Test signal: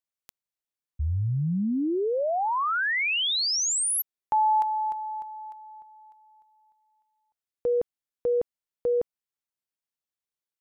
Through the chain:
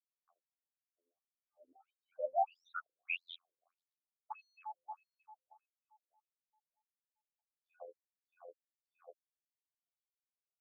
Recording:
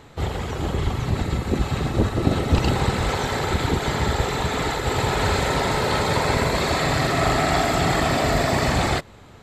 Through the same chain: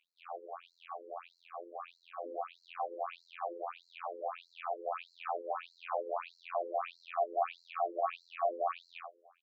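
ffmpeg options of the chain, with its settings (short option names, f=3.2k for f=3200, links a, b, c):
-filter_complex "[0:a]acrossover=split=3400[a][b];[b]acompressor=threshold=-45dB:ratio=12:attack=0.28:release=25[c];[a][c]amix=inputs=2:normalize=0,asplit=2[d][e];[e]adelay=15,volume=-6dB[f];[d][f]amix=inputs=2:normalize=0,asplit=2[g][h];[h]aecho=0:1:25|78:0.398|0.398[i];[g][i]amix=inputs=2:normalize=0,asoftclip=type=tanh:threshold=-10.5dB,afftfilt=real='hypot(re,im)*cos(PI*b)':imag='0':win_size=2048:overlap=0.75,adynamicsmooth=sensitivity=7.5:basefreq=1.6k,asplit=3[j][k][l];[j]bandpass=f=730:t=q:w=8,volume=0dB[m];[k]bandpass=f=1.09k:t=q:w=8,volume=-6dB[n];[l]bandpass=f=2.44k:t=q:w=8,volume=-9dB[o];[m][n][o]amix=inputs=3:normalize=0,aresample=16000,aresample=44100,equalizer=f=190:w=7.1:g=11.5,afftfilt=real='re*between(b*sr/1024,370*pow(5800/370,0.5+0.5*sin(2*PI*1.6*pts/sr))/1.41,370*pow(5800/370,0.5+0.5*sin(2*PI*1.6*pts/sr))*1.41)':imag='im*between(b*sr/1024,370*pow(5800/370,0.5+0.5*sin(2*PI*1.6*pts/sr))/1.41,370*pow(5800/370,0.5+0.5*sin(2*PI*1.6*pts/sr))*1.41)':win_size=1024:overlap=0.75,volume=4dB"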